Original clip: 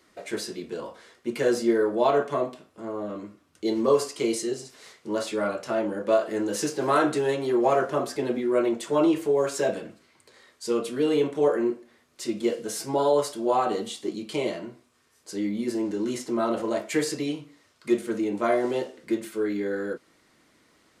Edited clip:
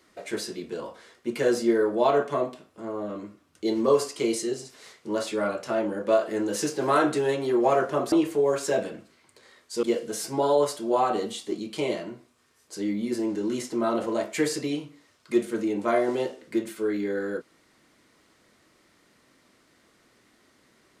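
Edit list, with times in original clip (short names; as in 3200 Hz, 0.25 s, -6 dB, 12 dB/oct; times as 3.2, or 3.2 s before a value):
8.12–9.03 cut
10.74–12.39 cut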